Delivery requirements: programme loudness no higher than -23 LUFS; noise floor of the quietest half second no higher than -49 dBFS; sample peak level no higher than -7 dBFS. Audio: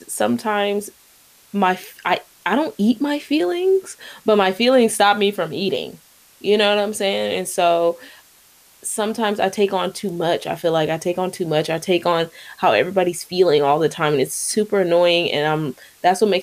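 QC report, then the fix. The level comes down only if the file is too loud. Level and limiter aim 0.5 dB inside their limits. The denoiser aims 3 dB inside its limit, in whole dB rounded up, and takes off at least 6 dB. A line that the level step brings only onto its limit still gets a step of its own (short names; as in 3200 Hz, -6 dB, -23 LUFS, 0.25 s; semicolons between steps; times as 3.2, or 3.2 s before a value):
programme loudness -19.0 LUFS: fail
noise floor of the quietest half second -51 dBFS: OK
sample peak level -4.5 dBFS: fail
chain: gain -4.5 dB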